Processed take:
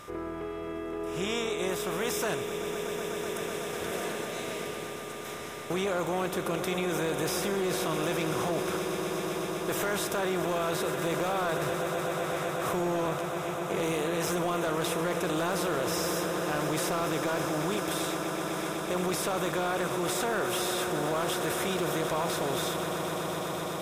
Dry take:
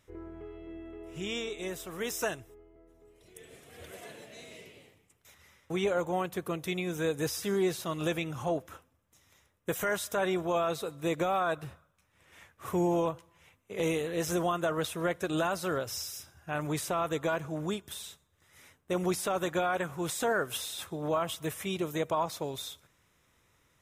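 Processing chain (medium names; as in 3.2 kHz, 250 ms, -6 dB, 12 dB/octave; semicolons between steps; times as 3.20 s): spectral levelling over time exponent 0.6; echo with a slow build-up 125 ms, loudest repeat 8, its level -14.5 dB; hard clipper -20 dBFS, distortion -19 dB; in parallel at -2 dB: compressor with a negative ratio -29 dBFS; on the sum: whistle 1.2 kHz -41 dBFS; trim -6.5 dB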